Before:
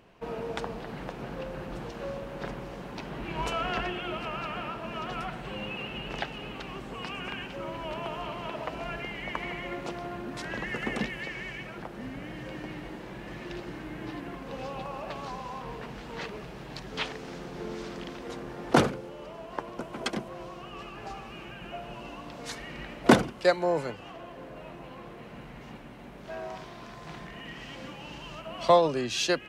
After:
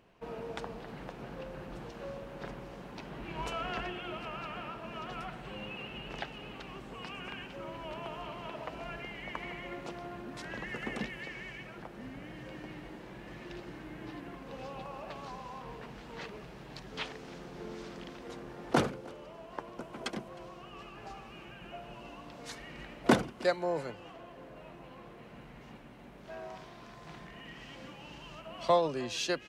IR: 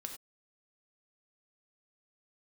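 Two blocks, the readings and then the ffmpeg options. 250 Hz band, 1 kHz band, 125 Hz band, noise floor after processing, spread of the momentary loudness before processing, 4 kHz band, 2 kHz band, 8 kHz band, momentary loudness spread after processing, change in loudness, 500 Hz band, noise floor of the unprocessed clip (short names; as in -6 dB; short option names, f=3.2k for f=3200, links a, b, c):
-6.0 dB, -6.0 dB, -6.0 dB, -51 dBFS, 16 LU, -6.0 dB, -6.0 dB, -6.0 dB, 15 LU, -6.0 dB, -6.0 dB, -45 dBFS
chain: -af "aecho=1:1:311:0.0708,volume=-6dB"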